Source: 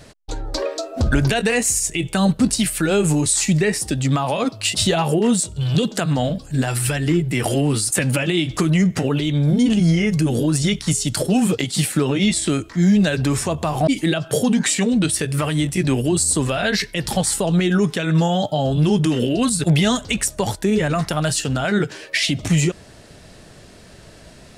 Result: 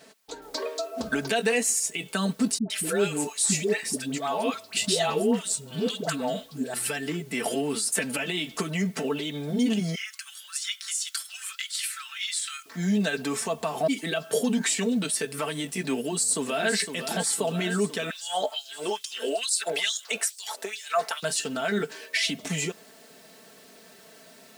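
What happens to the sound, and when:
0:00.42: noise floor change −64 dB −52 dB
0:02.58–0:06.74: all-pass dispersion highs, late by 120 ms, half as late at 680 Hz
0:09.95–0:12.66: elliptic high-pass filter 1,300 Hz, stop band 70 dB
0:15.96–0:16.72: delay throw 510 ms, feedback 70%, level −8.5 dB
0:18.10–0:21.23: auto-filter high-pass sine 2.3 Hz 440–5,300 Hz
whole clip: high-pass filter 270 Hz 12 dB per octave; comb filter 4.5 ms, depth 69%; level −7.5 dB

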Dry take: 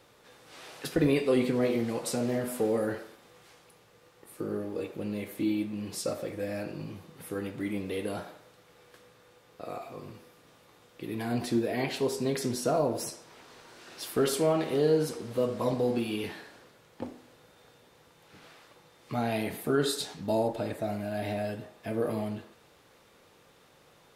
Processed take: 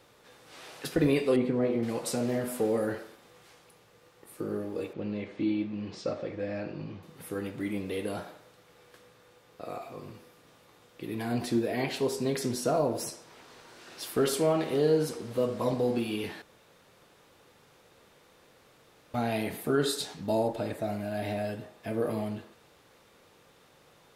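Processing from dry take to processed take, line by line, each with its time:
0:01.36–0:01.83: low-pass filter 1,200 Hz 6 dB per octave
0:04.93–0:07.03: Bessel low-pass filter 3,800 Hz, order 6
0:16.42–0:19.14: fill with room tone

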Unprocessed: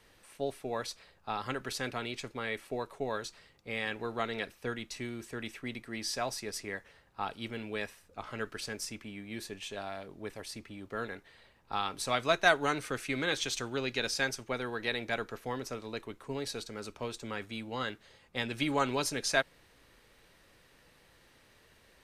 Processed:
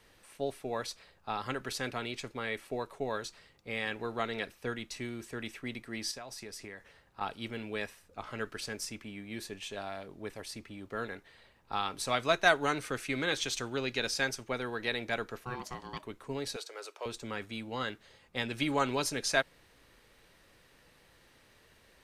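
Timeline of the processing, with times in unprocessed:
0:06.11–0:07.21: downward compressor 12 to 1, threshold −40 dBFS
0:15.43–0:16.03: ring modulation 620 Hz
0:16.56–0:17.06: inverse Chebyshev high-pass filter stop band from 210 Hz

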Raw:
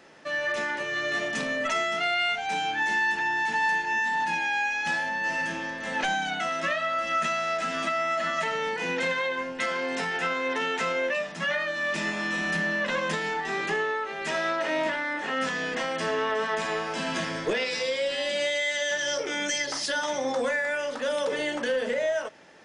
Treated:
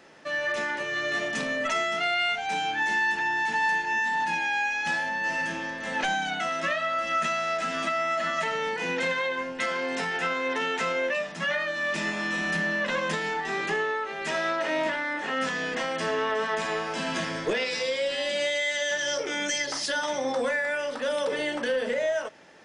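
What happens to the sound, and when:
0:19.97–0:21.92: notch filter 6,700 Hz, Q 8.3

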